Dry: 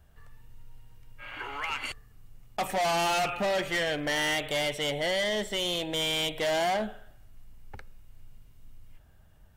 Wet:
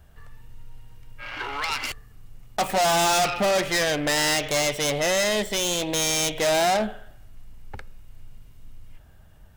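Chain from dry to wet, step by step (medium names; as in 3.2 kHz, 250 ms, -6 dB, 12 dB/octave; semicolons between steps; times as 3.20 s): self-modulated delay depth 0.079 ms; trim +6.5 dB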